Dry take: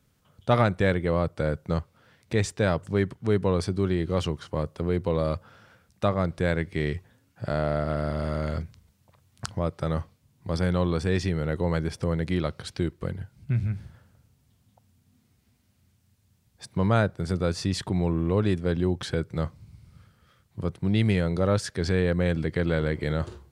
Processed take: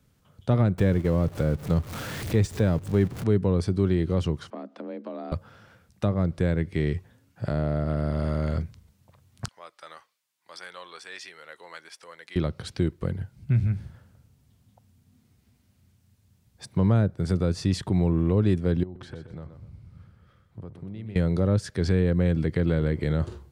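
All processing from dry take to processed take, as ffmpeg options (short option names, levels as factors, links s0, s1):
-filter_complex "[0:a]asettb=1/sr,asplit=3[s0][s1][s2];[s0]atrim=end=0.784[s3];[s1]atrim=start=0.78:end=3.24,asetpts=PTS-STARTPTS,afade=t=in:d=0.004:c=qsin,afade=t=out:st=2.456:d=0.004:c=qsin,aeval=exprs='val(0)+0.5*0.0211*sgn(val(0))':c=same,agate=range=0.355:threshold=0.0355:ratio=16:release=100:detection=peak,acompressor=mode=upward:threshold=0.0562:ratio=2.5:attack=3.2:release=140:knee=2.83:detection=peak[s4];[s2]atrim=start=3.236[s5];[s3][s4]acrossfade=d=0.004:c1=hsin:c2=qsin[s6];[s6][s5]acrossfade=d=0.004:c1=qsin:c2=hsin,asettb=1/sr,asplit=3[s7][s8][s9];[s7]atrim=end=4.504[s10];[s8]atrim=start=4.5:end=5.32,asetpts=PTS-STARTPTS,afade=t=in:d=0.004:c=qsin,afade=t=out:st=0.816:d=0.004:c=qsin,acompressor=threshold=0.0126:ratio=2.5:attack=3.2:release=140:knee=1:detection=peak,afreqshift=120,highpass=210,lowpass=3800[s11];[s9]atrim=start=5.316[s12];[s10][s11]acrossfade=d=0.004:c1=hsin:c2=qsin[s13];[s13][s12]acrossfade=d=0.004:c1=qsin:c2=hsin,asettb=1/sr,asplit=3[s14][s15][s16];[s14]atrim=end=9.484[s17];[s15]atrim=start=9.48:end=12.36,asetpts=PTS-STARTPTS,afade=t=in:d=0.004:c=qsin,afade=t=out:st=2.876:d=0.004:c=qsin,highpass=1300,flanger=delay=1.6:depth=2:regen=76:speed=1.5:shape=triangular[s18];[s16]atrim=start=12.356[s19];[s17][s18]acrossfade=d=0.004:c1=hsin:c2=qsin[s20];[s20][s19]acrossfade=d=0.004:c1=qsin:c2=hsin,asettb=1/sr,asplit=3[s21][s22][s23];[s21]atrim=end=18.834[s24];[s22]atrim=start=18.83:end=21.16,asetpts=PTS-STARTPTS,afade=t=in:d=0.004:c=qsin,afade=t=out:st=2.326:d=0.004:c=qsin,acompressor=threshold=0.0126:ratio=6:attack=3.2:release=140:knee=1:detection=peak,highshelf=f=2900:g=-11,aecho=1:1:125|250|375:0.335|0.1|0.0301,atrim=end_sample=102753[s25];[s23]atrim=start=21.156[s26];[s24][s25]acrossfade=d=0.004:c1=hsin:c2=qsin[s27];[s27][s26]acrossfade=d=0.004:c1=qsin:c2=hsin,lowshelf=f=430:g=3.5,acrossover=split=430[s28][s29];[s29]acompressor=threshold=0.0224:ratio=4[s30];[s28][s30]amix=inputs=2:normalize=0"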